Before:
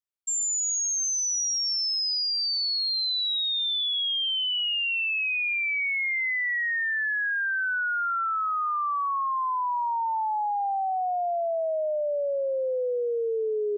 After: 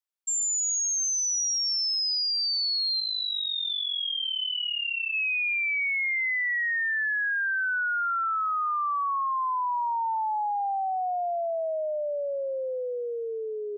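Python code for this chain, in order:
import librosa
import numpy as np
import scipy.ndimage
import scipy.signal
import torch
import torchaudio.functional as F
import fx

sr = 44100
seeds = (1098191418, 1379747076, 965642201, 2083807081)

y = scipy.signal.sosfilt(scipy.signal.butter(2, 560.0, 'highpass', fs=sr, output='sos'), x)
y = fx.flanger_cancel(y, sr, hz=1.4, depth_ms=4.5, at=(3.0, 5.14))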